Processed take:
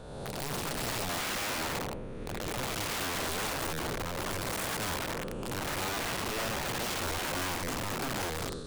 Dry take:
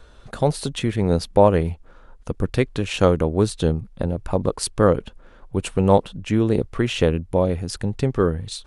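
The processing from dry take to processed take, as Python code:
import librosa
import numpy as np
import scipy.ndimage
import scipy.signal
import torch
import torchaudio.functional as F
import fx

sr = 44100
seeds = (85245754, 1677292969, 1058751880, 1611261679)

y = fx.spec_blur(x, sr, span_ms=564.0)
y = (np.mod(10.0 ** (26.0 / 20.0) * y + 1.0, 2.0) - 1.0) / 10.0 ** (26.0 / 20.0)
y = F.gain(torch.from_numpy(y), -3.0).numpy()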